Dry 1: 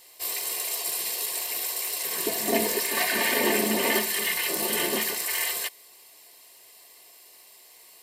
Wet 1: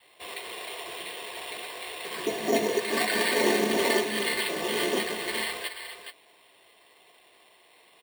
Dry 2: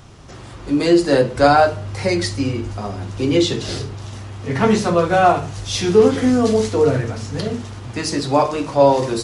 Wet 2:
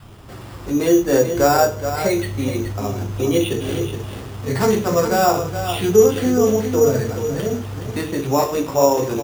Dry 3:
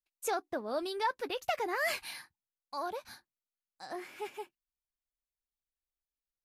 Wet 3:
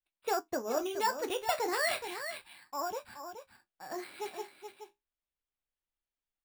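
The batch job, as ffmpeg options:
-filter_complex "[0:a]asplit=2[s0][s1];[s1]acompressor=threshold=0.0631:ratio=6,volume=1.19[s2];[s0][s2]amix=inputs=2:normalize=0,aresample=8000,aresample=44100,asplit=2[s3][s4];[s4]aecho=0:1:423:0.355[s5];[s3][s5]amix=inputs=2:normalize=0,flanger=delay=9.4:depth=7.1:regen=-57:speed=0.32:shape=sinusoidal,adynamicequalizer=threshold=0.0251:dfrequency=430:dqfactor=2.4:tfrequency=430:tqfactor=2.4:attack=5:release=100:ratio=0.375:range=2:mode=boostabove:tftype=bell,acrusher=samples=7:mix=1:aa=0.000001,volume=0.841"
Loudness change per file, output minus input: -3.0 LU, -1.0 LU, +1.5 LU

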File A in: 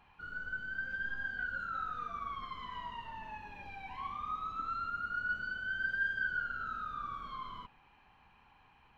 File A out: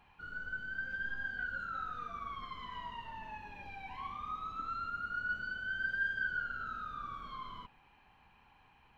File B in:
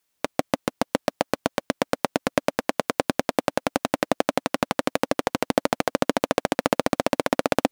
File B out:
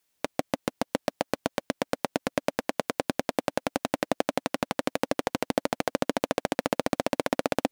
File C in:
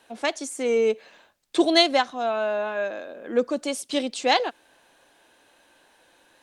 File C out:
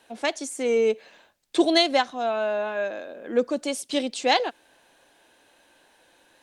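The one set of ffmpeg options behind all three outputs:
-af "equalizer=f=1200:t=o:w=0.52:g=-2.5,alimiter=limit=0.447:level=0:latency=1:release=127"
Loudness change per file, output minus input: -1.0 LU, -4.5 LU, -0.5 LU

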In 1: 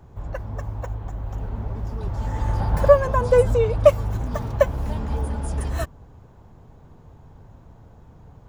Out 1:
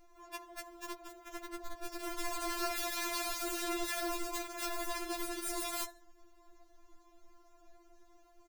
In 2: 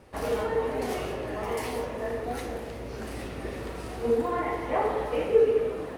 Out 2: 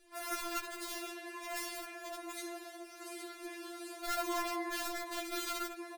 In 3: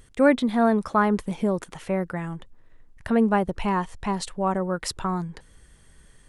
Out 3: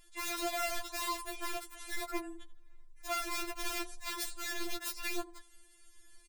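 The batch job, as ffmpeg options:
-af "highshelf=f=2200:g=10,bandreject=f=64.35:t=h:w=4,bandreject=f=128.7:t=h:w=4,bandreject=f=193.05:t=h:w=4,bandreject=f=257.4:t=h:w=4,bandreject=f=321.75:t=h:w=4,bandreject=f=386.1:t=h:w=4,bandreject=f=450.45:t=h:w=4,bandreject=f=514.8:t=h:w=4,bandreject=f=579.15:t=h:w=4,bandreject=f=643.5:t=h:w=4,bandreject=f=707.85:t=h:w=4,bandreject=f=772.2:t=h:w=4,bandreject=f=836.55:t=h:w=4,bandreject=f=900.9:t=h:w=4,bandreject=f=965.25:t=h:w=4,bandreject=f=1029.6:t=h:w=4,bandreject=f=1093.95:t=h:w=4,asoftclip=type=tanh:threshold=0.15,equalizer=f=180:t=o:w=0.28:g=2.5,aecho=1:1:81|162:0.119|0.0345,aeval=exprs='(mod(12.6*val(0)+1,2)-1)/12.6':c=same,bandreject=f=3000:w=10,afftfilt=real='re*4*eq(mod(b,16),0)':imag='im*4*eq(mod(b,16),0)':win_size=2048:overlap=0.75,volume=0.422"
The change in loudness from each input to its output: -15.5 LU, -10.5 LU, -13.0 LU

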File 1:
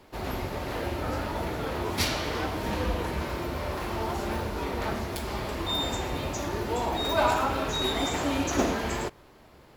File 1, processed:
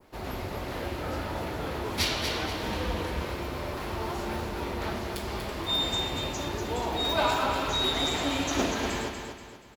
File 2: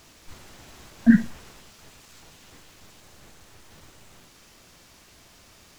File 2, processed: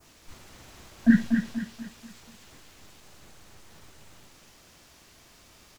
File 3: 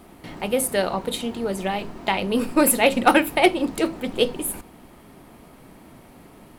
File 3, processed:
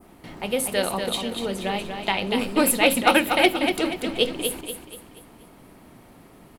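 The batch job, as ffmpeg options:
-af "adynamicequalizer=threshold=0.00891:dfrequency=3500:dqfactor=1:tfrequency=3500:tqfactor=1:attack=5:release=100:ratio=0.375:range=3:mode=boostabove:tftype=bell,aecho=1:1:240|480|720|960|1200:0.473|0.189|0.0757|0.0303|0.0121,volume=0.708"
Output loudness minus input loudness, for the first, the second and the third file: -0.5 LU, -4.0 LU, -0.5 LU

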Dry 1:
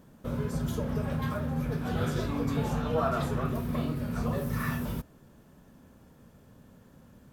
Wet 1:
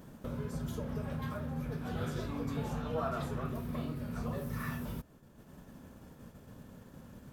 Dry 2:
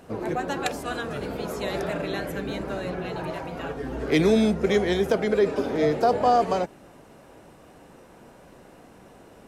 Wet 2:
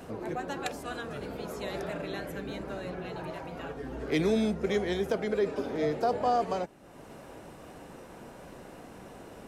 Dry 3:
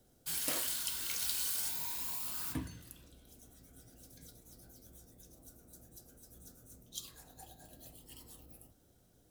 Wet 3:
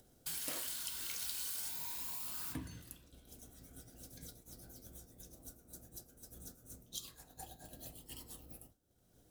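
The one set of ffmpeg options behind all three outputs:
-af "agate=range=0.0224:threshold=0.00398:ratio=3:detection=peak,acompressor=mode=upward:threshold=0.0355:ratio=2.5,volume=0.447"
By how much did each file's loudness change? -7.0 LU, -7.0 LU, -7.5 LU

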